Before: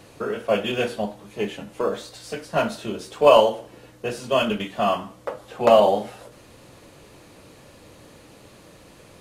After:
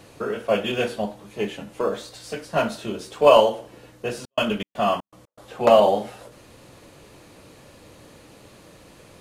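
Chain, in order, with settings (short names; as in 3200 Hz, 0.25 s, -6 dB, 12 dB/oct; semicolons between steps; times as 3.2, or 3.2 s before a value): 4.21–5.56 step gate ".x.xx.xx" 120 bpm -60 dB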